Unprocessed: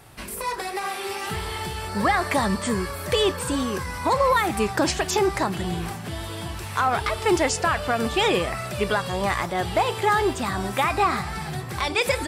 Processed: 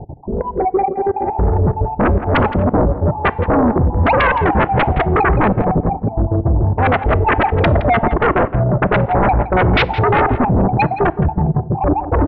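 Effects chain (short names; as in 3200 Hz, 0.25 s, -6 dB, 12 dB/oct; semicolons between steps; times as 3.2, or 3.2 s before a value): random spectral dropouts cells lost 41%; steep low-pass 860 Hz 72 dB/oct; low shelf 240 Hz +6.5 dB; 11.36–11.83 compressor 2:1, threshold -29 dBFS, peak gain reduction 4.5 dB; sine folder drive 14 dB, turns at -9.5 dBFS; on a send: echo 0.167 s -13.5 dB; on the sum: FDN reverb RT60 0.88 s, low-frequency decay 1.6×, high-frequency decay 0.7×, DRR 18.5 dB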